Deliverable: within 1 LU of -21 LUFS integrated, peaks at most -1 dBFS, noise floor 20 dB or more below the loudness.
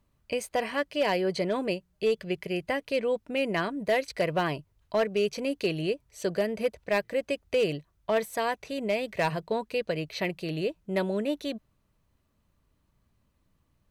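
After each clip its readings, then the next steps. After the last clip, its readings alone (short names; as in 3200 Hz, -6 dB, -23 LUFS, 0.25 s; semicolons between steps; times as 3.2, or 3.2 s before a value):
clipped 0.3%; flat tops at -18.5 dBFS; loudness -30.0 LUFS; peak -18.5 dBFS; loudness target -21.0 LUFS
-> clip repair -18.5 dBFS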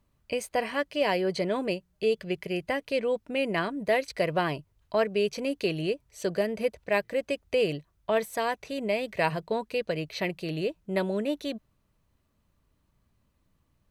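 clipped 0.0%; loudness -29.5 LUFS; peak -10.5 dBFS; loudness target -21.0 LUFS
-> gain +8.5 dB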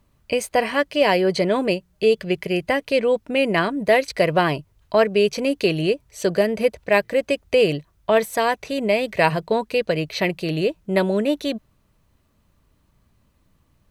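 loudness -21.0 LUFS; peak -2.0 dBFS; noise floor -64 dBFS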